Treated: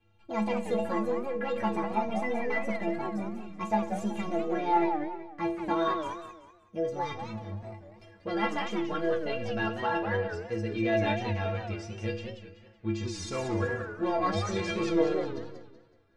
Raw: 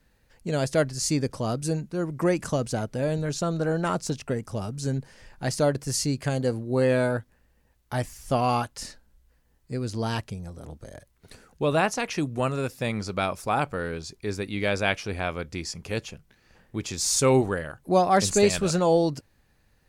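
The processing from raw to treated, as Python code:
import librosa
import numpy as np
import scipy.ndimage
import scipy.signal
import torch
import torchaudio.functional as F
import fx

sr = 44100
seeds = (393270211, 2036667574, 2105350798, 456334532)

p1 = fx.speed_glide(x, sr, from_pct=159, to_pct=87)
p2 = 10.0 ** (-23.5 / 20.0) * (np.abs((p1 / 10.0 ** (-23.5 / 20.0) + 3.0) % 4.0 - 2.0) - 1.0)
p3 = p1 + (p2 * 10.0 ** (-6.5 / 20.0))
p4 = scipy.signal.sosfilt(scipy.signal.butter(2, 2800.0, 'lowpass', fs=sr, output='sos'), p3)
p5 = fx.stiff_resonator(p4, sr, f0_hz=100.0, decay_s=0.66, stiffness=0.03)
p6 = fx.rev_schroeder(p5, sr, rt60_s=0.66, comb_ms=32, drr_db=12.0)
p7 = fx.echo_warbled(p6, sr, ms=188, feedback_pct=35, rate_hz=2.8, cents=218, wet_db=-8)
y = p7 * 10.0 ** (7.5 / 20.0)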